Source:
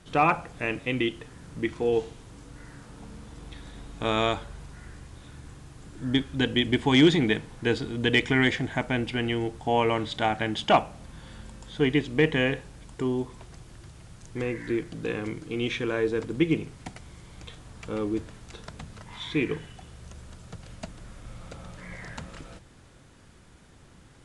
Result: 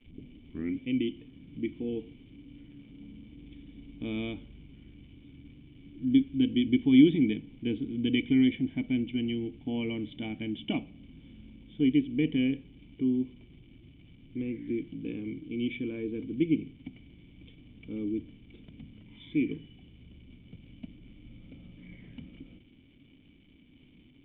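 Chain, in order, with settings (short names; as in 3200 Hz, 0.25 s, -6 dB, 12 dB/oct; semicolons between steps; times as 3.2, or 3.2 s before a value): tape start at the beginning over 0.87 s; crackle 490/s -35 dBFS; vocal tract filter i; gain +4 dB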